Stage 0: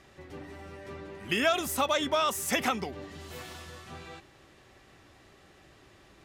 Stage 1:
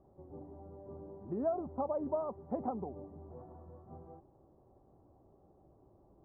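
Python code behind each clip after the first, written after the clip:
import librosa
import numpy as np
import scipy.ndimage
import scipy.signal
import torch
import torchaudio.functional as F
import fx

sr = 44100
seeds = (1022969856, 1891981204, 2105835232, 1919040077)

y = scipy.signal.sosfilt(scipy.signal.butter(6, 910.0, 'lowpass', fs=sr, output='sos'), x)
y = y * librosa.db_to_amplitude(-5.0)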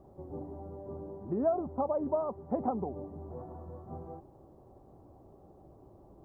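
y = fx.rider(x, sr, range_db=3, speed_s=2.0)
y = y * librosa.db_to_amplitude(5.0)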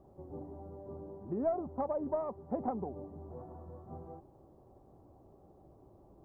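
y = fx.tracing_dist(x, sr, depth_ms=0.023)
y = y * librosa.db_to_amplitude(-3.5)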